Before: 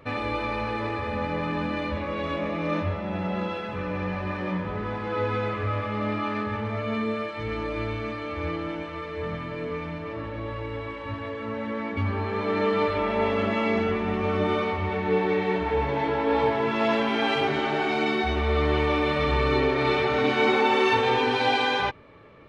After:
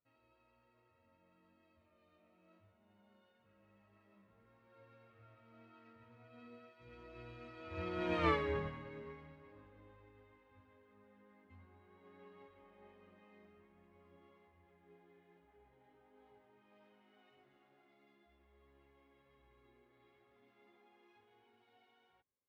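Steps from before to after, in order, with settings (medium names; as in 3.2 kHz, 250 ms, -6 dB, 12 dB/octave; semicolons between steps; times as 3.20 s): Doppler pass-by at 8.27 s, 27 m/s, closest 3 m; upward expansion 1.5:1, over -57 dBFS; trim +4.5 dB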